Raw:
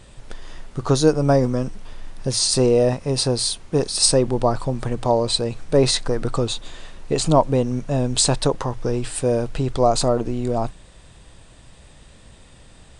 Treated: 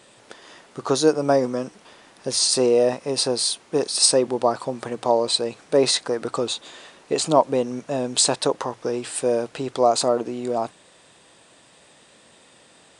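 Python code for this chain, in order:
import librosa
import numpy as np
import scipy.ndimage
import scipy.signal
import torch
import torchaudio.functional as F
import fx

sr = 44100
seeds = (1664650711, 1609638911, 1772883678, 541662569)

y = scipy.signal.sosfilt(scipy.signal.butter(2, 290.0, 'highpass', fs=sr, output='sos'), x)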